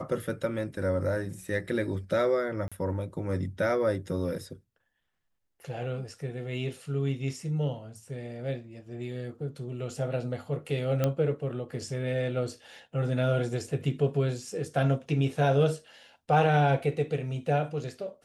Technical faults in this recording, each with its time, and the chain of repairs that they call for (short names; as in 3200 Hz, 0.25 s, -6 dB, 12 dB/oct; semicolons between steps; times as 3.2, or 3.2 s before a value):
2.68–2.72 gap 36 ms
11.04 pop -13 dBFS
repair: de-click; interpolate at 2.68, 36 ms